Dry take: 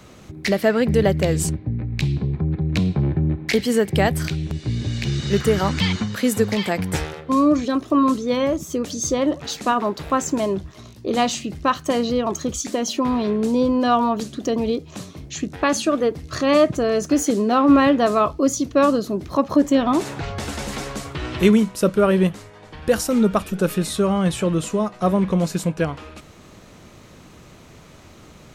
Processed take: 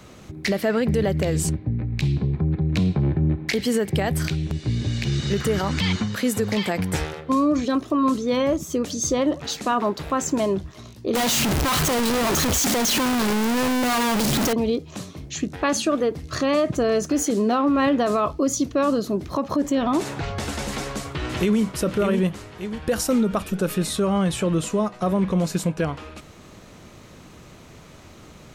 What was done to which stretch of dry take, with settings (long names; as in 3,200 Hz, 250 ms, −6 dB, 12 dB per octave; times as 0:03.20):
0:11.15–0:14.53: sign of each sample alone
0:20.70–0:21.60: delay throw 590 ms, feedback 30%, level −6.5 dB
whole clip: brickwall limiter −13 dBFS